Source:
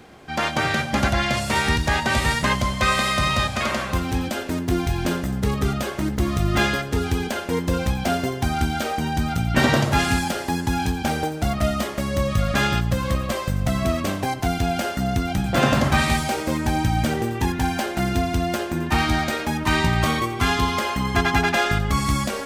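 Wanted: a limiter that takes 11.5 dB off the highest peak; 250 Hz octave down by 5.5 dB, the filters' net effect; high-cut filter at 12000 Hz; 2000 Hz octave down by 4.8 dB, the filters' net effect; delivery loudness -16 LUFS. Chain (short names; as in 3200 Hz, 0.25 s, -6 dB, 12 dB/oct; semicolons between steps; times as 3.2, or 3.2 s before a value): LPF 12000 Hz; bell 250 Hz -7.5 dB; bell 2000 Hz -6 dB; gain +12 dB; limiter -6 dBFS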